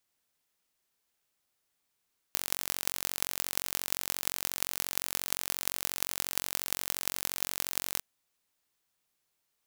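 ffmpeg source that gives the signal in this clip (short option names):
-f lavfi -i "aevalsrc='0.891*eq(mod(n,965),0)*(0.5+0.5*eq(mod(n,7720),0))':d=5.66:s=44100"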